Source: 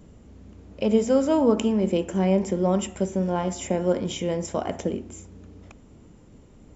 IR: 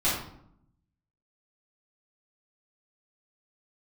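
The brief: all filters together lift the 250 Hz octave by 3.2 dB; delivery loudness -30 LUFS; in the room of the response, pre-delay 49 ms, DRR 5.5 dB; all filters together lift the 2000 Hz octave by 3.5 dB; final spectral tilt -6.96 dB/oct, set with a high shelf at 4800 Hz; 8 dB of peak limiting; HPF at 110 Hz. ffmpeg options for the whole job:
-filter_complex "[0:a]highpass=110,equalizer=f=250:t=o:g=4.5,equalizer=f=2k:t=o:g=5,highshelf=f=4.8k:g=-3.5,alimiter=limit=-13dB:level=0:latency=1,asplit=2[a][b];[1:a]atrim=start_sample=2205,adelay=49[c];[b][c]afir=irnorm=-1:irlink=0,volume=-17.5dB[d];[a][d]amix=inputs=2:normalize=0,volume=-7.5dB"

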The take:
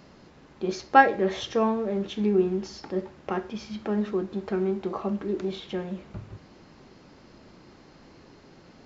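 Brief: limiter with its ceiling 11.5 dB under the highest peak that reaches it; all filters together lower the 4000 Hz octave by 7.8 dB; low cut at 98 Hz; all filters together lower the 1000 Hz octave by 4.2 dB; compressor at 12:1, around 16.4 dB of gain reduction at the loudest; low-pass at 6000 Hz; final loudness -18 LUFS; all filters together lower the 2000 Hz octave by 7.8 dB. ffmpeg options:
-af "highpass=98,lowpass=6k,equalizer=f=1k:t=o:g=-4,equalizer=f=2k:t=o:g=-7.5,equalizer=f=4k:t=o:g=-6.5,acompressor=threshold=-30dB:ratio=12,volume=21dB,alimiter=limit=-8.5dB:level=0:latency=1"

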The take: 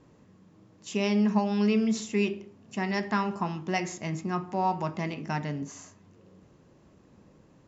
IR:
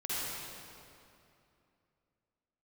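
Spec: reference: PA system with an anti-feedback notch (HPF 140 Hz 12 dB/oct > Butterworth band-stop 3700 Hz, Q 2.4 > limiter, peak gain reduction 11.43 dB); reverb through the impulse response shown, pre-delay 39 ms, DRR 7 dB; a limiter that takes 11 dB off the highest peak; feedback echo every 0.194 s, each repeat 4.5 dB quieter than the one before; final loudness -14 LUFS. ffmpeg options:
-filter_complex "[0:a]alimiter=level_in=0.5dB:limit=-24dB:level=0:latency=1,volume=-0.5dB,aecho=1:1:194|388|582|776|970|1164|1358|1552|1746:0.596|0.357|0.214|0.129|0.0772|0.0463|0.0278|0.0167|0.01,asplit=2[a][b];[1:a]atrim=start_sample=2205,adelay=39[c];[b][c]afir=irnorm=-1:irlink=0,volume=-12.5dB[d];[a][d]amix=inputs=2:normalize=0,highpass=140,asuperstop=centerf=3700:order=8:qfactor=2.4,volume=25dB,alimiter=limit=-5.5dB:level=0:latency=1"

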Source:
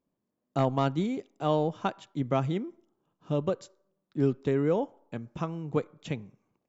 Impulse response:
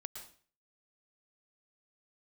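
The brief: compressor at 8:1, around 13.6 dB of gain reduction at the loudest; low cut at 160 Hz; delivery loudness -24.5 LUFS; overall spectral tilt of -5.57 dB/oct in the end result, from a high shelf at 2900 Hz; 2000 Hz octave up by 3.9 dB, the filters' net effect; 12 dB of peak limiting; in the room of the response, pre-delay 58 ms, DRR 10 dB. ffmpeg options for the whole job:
-filter_complex "[0:a]highpass=160,equalizer=f=2k:t=o:g=3.5,highshelf=f=2.9k:g=4,acompressor=threshold=-35dB:ratio=8,alimiter=level_in=7.5dB:limit=-24dB:level=0:latency=1,volume=-7.5dB,asplit=2[a][b];[1:a]atrim=start_sample=2205,adelay=58[c];[b][c]afir=irnorm=-1:irlink=0,volume=-7dB[d];[a][d]amix=inputs=2:normalize=0,volume=19.5dB"

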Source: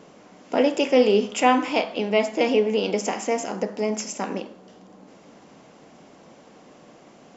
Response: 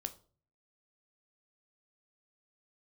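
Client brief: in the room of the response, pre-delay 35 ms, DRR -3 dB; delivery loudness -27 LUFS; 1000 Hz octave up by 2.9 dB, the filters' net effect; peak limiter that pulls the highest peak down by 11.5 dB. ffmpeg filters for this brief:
-filter_complex "[0:a]equalizer=f=1k:t=o:g=4,alimiter=limit=-13dB:level=0:latency=1,asplit=2[a][b];[1:a]atrim=start_sample=2205,adelay=35[c];[b][c]afir=irnorm=-1:irlink=0,volume=5dB[d];[a][d]amix=inputs=2:normalize=0,volume=-7.5dB"

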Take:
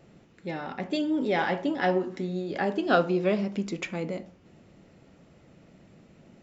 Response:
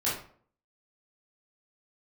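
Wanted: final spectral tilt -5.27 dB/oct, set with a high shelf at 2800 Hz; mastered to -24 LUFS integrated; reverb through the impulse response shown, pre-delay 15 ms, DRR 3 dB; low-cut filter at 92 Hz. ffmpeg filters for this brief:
-filter_complex "[0:a]highpass=92,highshelf=f=2.8k:g=-4.5,asplit=2[a][b];[1:a]atrim=start_sample=2205,adelay=15[c];[b][c]afir=irnorm=-1:irlink=0,volume=-11.5dB[d];[a][d]amix=inputs=2:normalize=0,volume=3dB"

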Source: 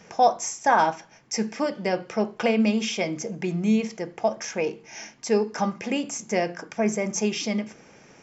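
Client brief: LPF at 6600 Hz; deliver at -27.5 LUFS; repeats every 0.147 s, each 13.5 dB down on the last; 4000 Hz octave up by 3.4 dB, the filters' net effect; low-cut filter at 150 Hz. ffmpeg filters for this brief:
-af "highpass=150,lowpass=6.6k,equalizer=f=4k:t=o:g=6,aecho=1:1:147|294:0.211|0.0444,volume=-2dB"

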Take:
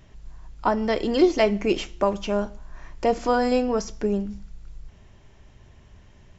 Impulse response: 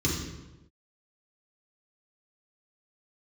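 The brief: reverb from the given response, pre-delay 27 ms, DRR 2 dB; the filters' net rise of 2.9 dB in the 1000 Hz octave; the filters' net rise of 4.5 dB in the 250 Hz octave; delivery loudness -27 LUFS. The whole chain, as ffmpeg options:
-filter_complex "[0:a]equalizer=f=250:t=o:g=5.5,equalizer=f=1k:t=o:g=3.5,asplit=2[a][b];[1:a]atrim=start_sample=2205,adelay=27[c];[b][c]afir=irnorm=-1:irlink=0,volume=-11dB[d];[a][d]amix=inputs=2:normalize=0,volume=-13dB"

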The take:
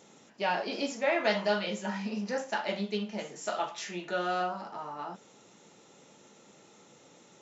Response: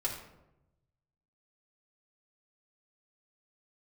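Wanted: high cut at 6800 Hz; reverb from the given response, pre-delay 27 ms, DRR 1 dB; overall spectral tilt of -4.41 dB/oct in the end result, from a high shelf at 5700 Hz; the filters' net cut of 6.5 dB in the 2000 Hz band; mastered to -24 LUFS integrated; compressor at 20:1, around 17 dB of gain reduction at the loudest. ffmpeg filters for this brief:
-filter_complex "[0:a]lowpass=6.8k,equalizer=f=2k:t=o:g=-8.5,highshelf=f=5.7k:g=-4,acompressor=threshold=-41dB:ratio=20,asplit=2[a][b];[1:a]atrim=start_sample=2205,adelay=27[c];[b][c]afir=irnorm=-1:irlink=0,volume=-5dB[d];[a][d]amix=inputs=2:normalize=0,volume=20dB"

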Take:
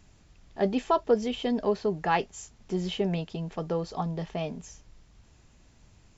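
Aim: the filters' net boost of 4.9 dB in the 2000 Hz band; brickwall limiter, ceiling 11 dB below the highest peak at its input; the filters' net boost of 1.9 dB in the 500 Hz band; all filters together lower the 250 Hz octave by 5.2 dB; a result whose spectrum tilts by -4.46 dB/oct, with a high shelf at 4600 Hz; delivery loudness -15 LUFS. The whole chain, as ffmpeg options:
-af "equalizer=f=250:t=o:g=-9,equalizer=f=500:t=o:g=4.5,equalizer=f=2k:t=o:g=5,highshelf=f=4.6k:g=5.5,volume=17dB,alimiter=limit=-2.5dB:level=0:latency=1"

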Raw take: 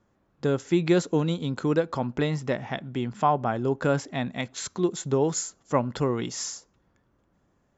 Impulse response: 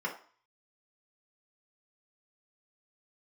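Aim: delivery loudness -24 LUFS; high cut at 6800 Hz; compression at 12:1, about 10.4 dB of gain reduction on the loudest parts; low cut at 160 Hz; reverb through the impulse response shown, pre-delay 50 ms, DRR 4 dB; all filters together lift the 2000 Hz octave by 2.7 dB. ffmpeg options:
-filter_complex "[0:a]highpass=160,lowpass=6.8k,equalizer=f=2k:t=o:g=3.5,acompressor=threshold=-27dB:ratio=12,asplit=2[a][b];[1:a]atrim=start_sample=2205,adelay=50[c];[b][c]afir=irnorm=-1:irlink=0,volume=-9.5dB[d];[a][d]amix=inputs=2:normalize=0,volume=9dB"

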